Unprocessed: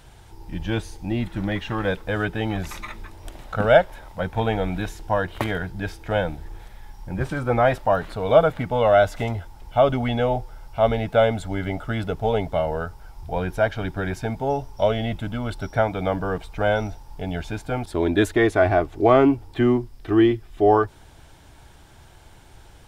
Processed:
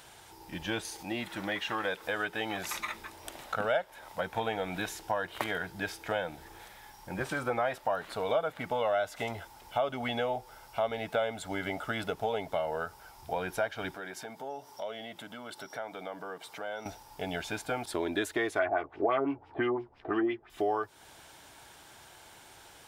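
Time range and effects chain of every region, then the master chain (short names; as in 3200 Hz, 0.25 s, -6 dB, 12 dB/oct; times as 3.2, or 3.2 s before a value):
0.85–2.71 low shelf 240 Hz -7.5 dB + upward compressor, threshold -33 dBFS
13.95–16.86 HPF 180 Hz + notch 2500 Hz + compressor 2.5:1, threshold -40 dBFS
18.59–20.5 doubler 14 ms -6.5 dB + LFO low-pass sine 5.9 Hz 600–3000 Hz
whole clip: HPF 600 Hz 6 dB/oct; high shelf 8000 Hz +4 dB; compressor 3:1, threshold -31 dBFS; gain +1 dB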